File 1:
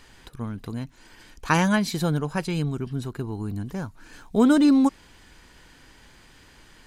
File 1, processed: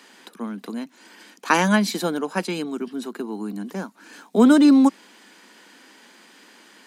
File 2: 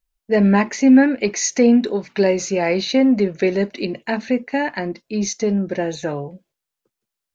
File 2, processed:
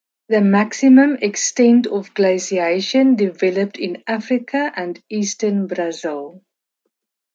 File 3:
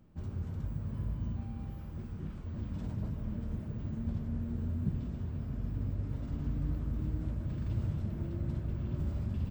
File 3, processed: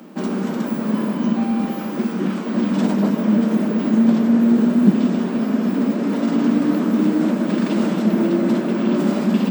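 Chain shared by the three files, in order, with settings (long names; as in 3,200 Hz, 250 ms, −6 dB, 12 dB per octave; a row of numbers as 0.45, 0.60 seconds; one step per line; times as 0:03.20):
Butterworth high-pass 190 Hz 72 dB per octave
normalise the peak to −1.5 dBFS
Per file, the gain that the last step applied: +3.5, +1.5, +26.5 decibels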